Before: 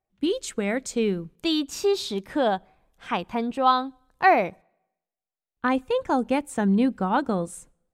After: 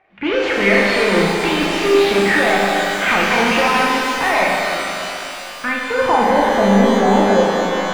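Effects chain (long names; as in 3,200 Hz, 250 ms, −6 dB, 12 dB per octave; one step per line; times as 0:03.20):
fade-out on the ending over 2.06 s
0:04.44–0:05.91: guitar amp tone stack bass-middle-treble 6-0-2
compressor whose output falls as the input rises −27 dBFS, ratio −1
mid-hump overdrive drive 33 dB, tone 2,900 Hz, clips at −12 dBFS
low-pass filter sweep 2,300 Hz → 640 Hz, 0:05.71–0:06.32
on a send: flutter between parallel walls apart 6.9 metres, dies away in 0.41 s
on the sum: reverb with rising layers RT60 3.2 s, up +12 semitones, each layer −8 dB, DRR −2 dB
level −2 dB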